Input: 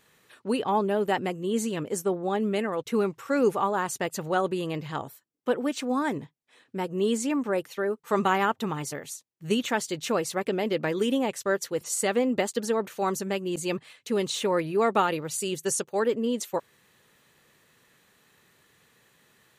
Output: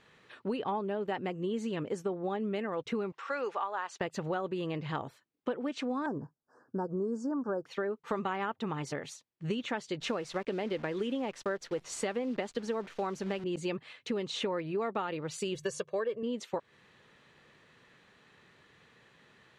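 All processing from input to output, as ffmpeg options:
-filter_complex "[0:a]asettb=1/sr,asplit=3[a][b][c];[a]atrim=end=3.124[d];[b]atrim=start=3.12:end=4.01,asetpts=PTS-STARTPTS,afade=t=in:d=0.004:c=qsin,afade=t=out:st=0.886:d=0.004:c=qsin,bandreject=f=2.2k:w=29,acompressor=mode=upward:threshold=-35dB:ratio=2.5:attack=3.2:release=140:knee=2.83:detection=peak,highpass=740,lowpass=6.7k[e];[c]atrim=start=4.006[f];[d][e]acrossfade=d=0.004:c1=hsin:c2=qsin[g];[g][f]acrossfade=d=0.004:c1=qsin:c2=hsin,asettb=1/sr,asplit=3[h][i][j];[h]atrim=end=6.064[k];[i]atrim=start=6.06:end=7.66,asetpts=PTS-STARTPTS,afade=t=in:d=0.004:c=qsin,afade=t=out:st=1.596:d=0.004:c=qsin,asuperstop=centerf=2800:order=20:qfactor=0.92,highshelf=f=7.1k:g=-10.5[l];[j]atrim=start=7.656[m];[k][l]acrossfade=d=0.004:c1=hsin:c2=qsin[n];[n][m]acrossfade=d=0.004:c1=qsin:c2=hsin,asettb=1/sr,asplit=3[o][p][q];[o]atrim=end=10.004[r];[p]atrim=start=10:end=13.44,asetpts=PTS-STARTPTS,afade=t=in:d=0.004:c=qsin,afade=t=out:st=3.436:d=0.004:c=qsin,highpass=f=120:w=0.5412,highpass=f=120:w=1.3066,acrusher=bits=8:dc=4:mix=0:aa=0.000001[s];[q]atrim=start=13.436[t];[r][s]acrossfade=d=0.004:c1=hsin:c2=qsin[u];[u][t]acrossfade=d=0.004:c1=qsin:c2=hsin,asettb=1/sr,asplit=3[v][w][x];[v]atrim=end=15.554[y];[w]atrim=start=15.55:end=16.23,asetpts=PTS-STARTPTS,afade=t=in:d=0.004:c=qsin,afade=t=out:st=0.676:d=0.004:c=qsin,bandreject=f=50:t=h:w=6,bandreject=f=100:t=h:w=6,bandreject=f=150:t=h:w=6,aecho=1:1:1.8:0.86,atrim=end_sample=29988[z];[x]atrim=start=16.226[aa];[y][z]acrossfade=d=0.004:c1=hsin:c2=qsin[ab];[ab][aa]acrossfade=d=0.004:c1=qsin:c2=hsin,lowpass=3.9k,acompressor=threshold=-33dB:ratio=6,volume=2dB"

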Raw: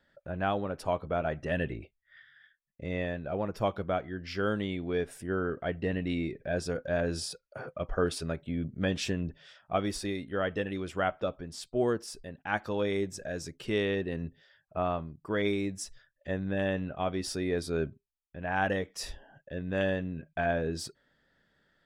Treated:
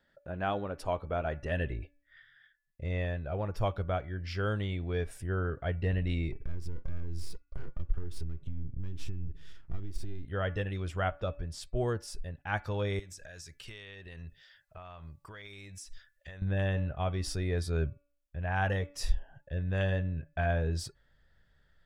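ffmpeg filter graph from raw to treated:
-filter_complex "[0:a]asettb=1/sr,asplit=3[a][b][c];[a]atrim=end=6.324[d];[b]atrim=start=6.32:end=10.25,asetpts=PTS-STARTPTS,afade=t=in:d=0.004:c=qsin,afade=t=out:st=3.926:d=0.004:c=qsin,aeval=exprs='if(lt(val(0),0),0.251*val(0),val(0))':c=same,lowshelf=f=460:t=q:w=3:g=8.5,acompressor=threshold=-40dB:ratio=5:attack=3.2:release=140:knee=1:detection=peak[e];[c]atrim=start=10.246[f];[d][e]acrossfade=d=0.004:c1=hsin:c2=qsin[g];[g][f]acrossfade=d=0.004:c1=qsin:c2=hsin,asettb=1/sr,asplit=3[h][i][j];[h]atrim=end=12.994[k];[i]atrim=start=12.99:end=16.42,asetpts=PTS-STARTPTS,afade=t=in:d=0.004:c=qsin,afade=t=out:st=3.426:d=0.004:c=qsin,tiltshelf=f=860:g=-8,acompressor=threshold=-43dB:ratio=5:attack=3.2:release=140:knee=1:detection=peak[l];[j]atrim=start=16.416[m];[k][l]acrossfade=d=0.004:c1=hsin:c2=qsin[n];[n][m]acrossfade=d=0.004:c1=qsin:c2=hsin,bandreject=f=287.3:t=h:w=4,bandreject=f=574.6:t=h:w=4,bandreject=f=861.9:t=h:w=4,bandreject=f=1.1492k:t=h:w=4,bandreject=f=1.4365k:t=h:w=4,bandreject=f=1.7238k:t=h:w=4,bandreject=f=2.0111k:t=h:w=4,bandreject=f=2.2984k:t=h:w=4,bandreject=f=2.5857k:t=h:w=4,asubboost=boost=10.5:cutoff=76,volume=-2dB"

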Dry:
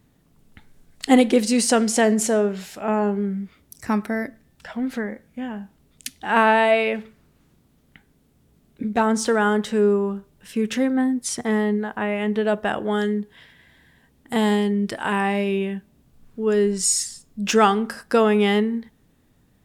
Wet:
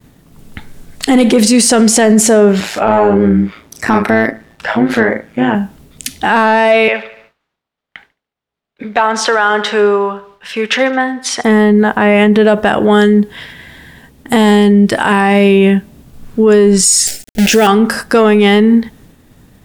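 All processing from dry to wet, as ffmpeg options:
-filter_complex "[0:a]asettb=1/sr,asplit=3[a][b][c];[a]atrim=end=2.604[d];[b]atrim=start=2.6:end=5.55,asetpts=PTS-STARTPTS,afade=t=in:d=0.004:c=qsin,afade=t=out:st=2.946:d=0.004:c=qsin,asplit=2[e][f];[f]adelay=36,volume=-6.5dB[g];[e][g]amix=inputs=2:normalize=0,atrim=end_sample=130095,tremolo=f=110:d=0.667,asplit=2[h][i];[i]highpass=f=720:p=1,volume=13dB,asoftclip=type=tanh:threshold=-10.5dB[j];[h][j]amix=inputs=2:normalize=0,lowpass=f=1.8k:p=1,volume=-6dB[k];[c]atrim=start=5.546[l];[d][k]acrossfade=d=0.004:c1=hsin:c2=qsin[m];[m][l]acrossfade=d=0.004:c1=qsin:c2=hsin,asettb=1/sr,asplit=3[n][o][p];[n]atrim=end=6.884[q];[o]atrim=start=6.88:end=11.44,asetpts=PTS-STARTPTS,afade=t=in:d=0.004:c=qsin,afade=t=out:st=4.556:d=0.004:c=qsin,acrossover=split=560 4800:gain=0.1 1 0.112[r][s][t];[r][s][t]amix=inputs=3:normalize=0,aecho=1:1:72|144|216|288|360:0.119|0.0677|0.0386|0.022|0.0125,atrim=end_sample=201096[u];[p]atrim=start=11.436[v];[q][u]acrossfade=d=0.004:c1=hsin:c2=qsin[w];[w][v]acrossfade=d=0.004:c1=qsin:c2=hsin,asettb=1/sr,asplit=3[x][y][z];[x]atrim=end=17.074[aa];[y]atrim=start=17.07:end=17.67,asetpts=PTS-STARTPTS,afade=t=in:d=0.004:c=qsin,afade=t=out:st=0.596:d=0.004:c=qsin,equalizer=f=130:w=2.5:g=-13,acrusher=bits=6:dc=4:mix=0:aa=0.000001,asuperstop=centerf=1100:order=4:qfactor=1.5[ab];[z]atrim=start=17.666[ac];[aa][ab]acrossfade=d=0.004:c1=hsin:c2=qsin[ad];[ad][ac]acrossfade=d=0.004:c1=qsin:c2=hsin,agate=range=-33dB:threshold=-56dB:ratio=3:detection=peak,acontrast=73,alimiter=level_in=13dB:limit=-1dB:release=50:level=0:latency=1,volume=-1dB"

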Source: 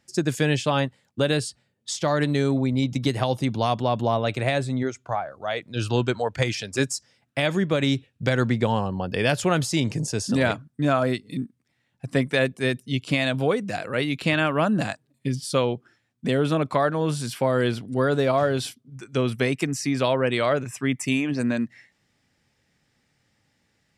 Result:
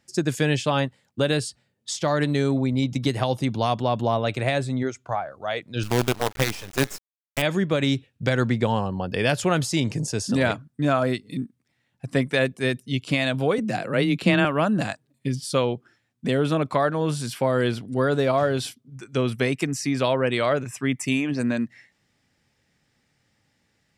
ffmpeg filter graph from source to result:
-filter_complex "[0:a]asettb=1/sr,asplit=3[a][b][c];[a]atrim=end=5.834[d];[b]atrim=start=5.83:end=7.42,asetpts=PTS-STARTPTS,afade=t=in:d=0.004:c=qsin,afade=t=out:st=1.586:d=0.004:c=qsin,highshelf=f=6.3k:g=-7,bandreject=f=425.1:t=h:w=4,bandreject=f=850.2:t=h:w=4,bandreject=f=1.2753k:t=h:w=4,bandreject=f=1.7004k:t=h:w=4,bandreject=f=2.1255k:t=h:w=4,bandreject=f=2.5506k:t=h:w=4,bandreject=f=2.9757k:t=h:w=4,bandreject=f=3.4008k:t=h:w=4,bandreject=f=3.8259k:t=h:w=4,bandreject=f=4.251k:t=h:w=4,bandreject=f=4.6761k:t=h:w=4,bandreject=f=5.1012k:t=h:w=4,bandreject=f=5.5263k:t=h:w=4,bandreject=f=5.9514k:t=h:w=4,bandreject=f=6.3765k:t=h:w=4,bandreject=f=6.8016k:t=h:w=4,bandreject=f=7.2267k:t=h:w=4,bandreject=f=7.6518k:t=h:w=4,bandreject=f=8.0769k:t=h:w=4,bandreject=f=8.502k:t=h:w=4,bandreject=f=8.9271k:t=h:w=4,bandreject=f=9.3522k:t=h:w=4,bandreject=f=9.7773k:t=h:w=4,bandreject=f=10.2024k:t=h:w=4,bandreject=f=10.6275k:t=h:w=4,bandreject=f=11.0526k:t=h:w=4,bandreject=f=11.4777k:t=h:w=4,bandreject=f=11.9028k:t=h:w=4,bandreject=f=12.3279k:t=h:w=4,bandreject=f=12.753k:t=h:w=4,bandreject=f=13.1781k:t=h:w=4,bandreject=f=13.6032k:t=h:w=4,bandreject=f=14.0283k:t=h:w=4,bandreject=f=14.4534k:t=h:w=4,bandreject=f=14.8785k:t=h:w=4,acrusher=bits=4:dc=4:mix=0:aa=0.000001[e];[c]atrim=start=7.416[f];[d][e]acrossfade=d=0.004:c1=hsin:c2=qsin[g];[g][f]acrossfade=d=0.004:c1=qsin:c2=hsin,asettb=1/sr,asplit=3[h][i][j];[h]atrim=end=13.584[k];[i]atrim=start=13.58:end=14.45,asetpts=PTS-STARTPTS,afade=t=in:d=0.004:c=qsin,afade=t=out:st=0.866:d=0.004:c=qsin,lowshelf=f=490:g=6,afreqshift=18[l];[j]atrim=start=14.446[m];[k][l]acrossfade=d=0.004:c1=hsin:c2=qsin[n];[n][m]acrossfade=d=0.004:c1=qsin:c2=hsin"

